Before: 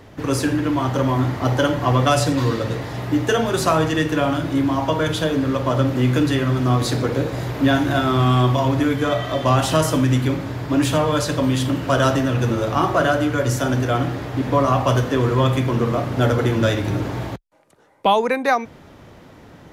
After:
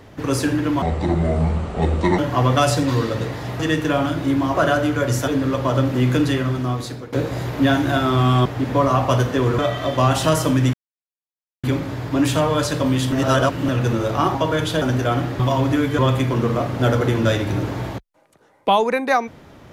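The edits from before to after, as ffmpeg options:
-filter_complex "[0:a]asplit=16[s0][s1][s2][s3][s4][s5][s6][s7][s8][s9][s10][s11][s12][s13][s14][s15];[s0]atrim=end=0.824[s16];[s1]atrim=start=0.82:end=1.68,asetpts=PTS-STARTPTS,asetrate=27783,aresample=44100[s17];[s2]atrim=start=1.676:end=3.092[s18];[s3]atrim=start=3.868:end=4.822[s19];[s4]atrim=start=12.918:end=13.652[s20];[s5]atrim=start=5.288:end=7.14,asetpts=PTS-STARTPTS,afade=t=out:st=1.002:d=0.85:silence=0.11885[s21];[s6]atrim=start=7.14:end=8.472,asetpts=PTS-STARTPTS,afade=t=in:d=0.004:c=hsin:silence=0.11885[s22];[s7]atrim=start=14.228:end=15.362[s23];[s8]atrim=start=9.058:end=10.21,asetpts=PTS-STARTPTS,afade=t=out:st=1.148:d=0.004:c=hsin,apad=pad_dur=0.9[s24];[s9]atrim=start=10.21:end=11.702,asetpts=PTS-STARTPTS,afade=t=in:d=0.004:c=hsin[s25];[s10]atrim=start=11.698:end=12.262,asetpts=PTS-STARTPTS,areverse[s26];[s11]atrim=start=12.258:end=12.922[s27];[s12]atrim=start=4.818:end=5.292[s28];[s13]atrim=start=13.648:end=14.232[s29];[s14]atrim=start=8.468:end=9.062[s30];[s15]atrim=start=15.358[s31];[s16][s17]acrossfade=d=0.004:c1=hsin:c2=hsin[s32];[s32][s18]acrossfade=d=0.004:c1=hsin:c2=hsin[s33];[s33][s19]acrossfade=d=0.004:c1=hsin:c2=hsin[s34];[s34][s20]acrossfade=d=0.004:c1=hsin:c2=hsin[s35];[s21][s22]concat=n=2:v=0:a=1[s36];[s35][s36]acrossfade=d=0.004:c1=hsin:c2=hsin[s37];[s37][s23]acrossfade=d=0.004:c1=hsin:c2=hsin[s38];[s24][s25]concat=n=2:v=0:a=1[s39];[s38][s39]acrossfade=d=0.004:c1=hsin:c2=hsin[s40];[s40][s26]acrossfade=d=0.004:c1=hsin:c2=hsin[s41];[s41][s27]acrossfade=d=0.004:c1=hsin:c2=hsin[s42];[s42][s28]acrossfade=d=0.004:c1=hsin:c2=hsin[s43];[s43][s29]acrossfade=d=0.004:c1=hsin:c2=hsin[s44];[s44][s30]acrossfade=d=0.004:c1=hsin:c2=hsin[s45];[s45][s31]acrossfade=d=0.004:c1=hsin:c2=hsin"

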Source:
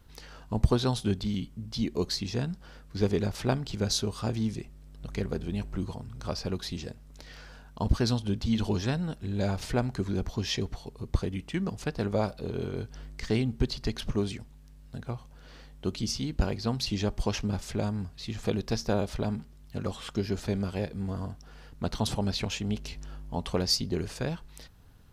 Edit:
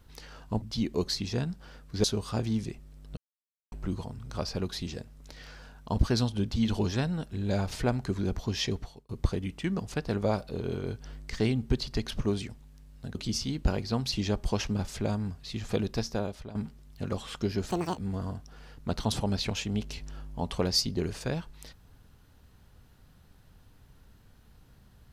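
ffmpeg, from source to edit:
-filter_complex "[0:a]asplit=10[s0][s1][s2][s3][s4][s5][s6][s7][s8][s9];[s0]atrim=end=0.622[s10];[s1]atrim=start=1.628:end=3.052[s11];[s2]atrim=start=3.938:end=5.07,asetpts=PTS-STARTPTS,afade=t=out:st=1.128:d=0.004:c=hsin[s12];[s3]atrim=start=5.07:end=5.62,asetpts=PTS-STARTPTS,volume=0[s13];[s4]atrim=start=5.62:end=10.99,asetpts=PTS-STARTPTS,afade=t=in:d=0.004:c=hsin,afade=t=out:st=5.04:d=0.33[s14];[s5]atrim=start=10.99:end=15.052,asetpts=PTS-STARTPTS,afade=t=in:d=0.004:c=hsin[s15];[s6]atrim=start=15.888:end=19.29,asetpts=PTS-STARTPTS,afade=t=out:st=2.742:d=0.66:silence=0.158489[s16];[s7]atrim=start=19.29:end=20.444,asetpts=PTS-STARTPTS,afade=t=in:d=0.004:c=hsin:silence=0.158489[s17];[s8]atrim=start=20.44:end=20.92,asetpts=PTS-STARTPTS,asetrate=78057,aresample=44100,atrim=end_sample=11959,asetpts=PTS-STARTPTS[s18];[s9]atrim=start=20.916[s19];[s10][s11]acrossfade=d=0.004:c1=hsin:c2=hsin[s20];[s12][s13][s14][s15]concat=n=4:v=0:a=1[s21];[s20][s21]acrossfade=d=0.004:c1=hsin:c2=hsin[s22];[s16][s17]concat=n=2:v=0:a=1[s23];[s22][s23]acrossfade=d=0.004:c1=hsin:c2=hsin[s24];[s24][s18]acrossfade=d=0.004:c1=hsin:c2=hsin[s25];[s25][s19]acrossfade=d=0.004:c1=hsin:c2=hsin"

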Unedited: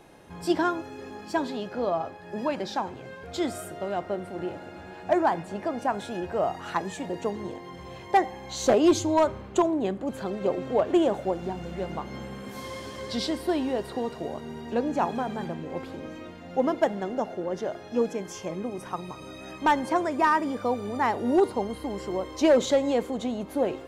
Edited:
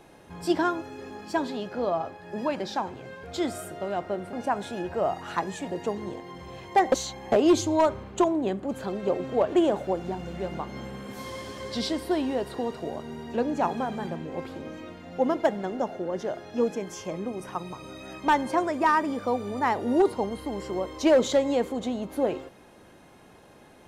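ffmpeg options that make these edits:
-filter_complex "[0:a]asplit=4[s0][s1][s2][s3];[s0]atrim=end=4.332[s4];[s1]atrim=start=5.708:end=8.302[s5];[s2]atrim=start=8.298:end=8.702,asetpts=PTS-STARTPTS,areverse[s6];[s3]atrim=start=8.698[s7];[s4][s5]acrossfade=d=0.004:c1=hsin:c2=hsin[s8];[s8][s6]acrossfade=d=0.004:c1=hsin:c2=hsin[s9];[s9][s7]acrossfade=d=0.004:c1=hsin:c2=hsin"

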